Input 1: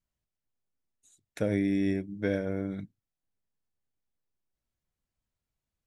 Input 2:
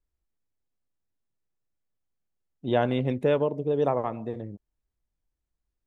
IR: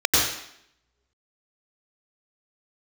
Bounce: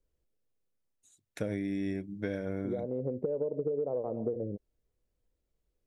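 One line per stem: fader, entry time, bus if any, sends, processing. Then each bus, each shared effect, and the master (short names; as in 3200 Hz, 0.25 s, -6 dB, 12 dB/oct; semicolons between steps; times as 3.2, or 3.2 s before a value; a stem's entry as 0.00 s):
-1.5 dB, 0.00 s, no send, dry
+2.0 dB, 0.00 s, no send, synth low-pass 500 Hz, resonance Q 3.7; compressor, threshold -19 dBFS, peak gain reduction 9 dB; auto duck -12 dB, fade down 0.85 s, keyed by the first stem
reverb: off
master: compressor 12:1, threshold -29 dBFS, peak gain reduction 13.5 dB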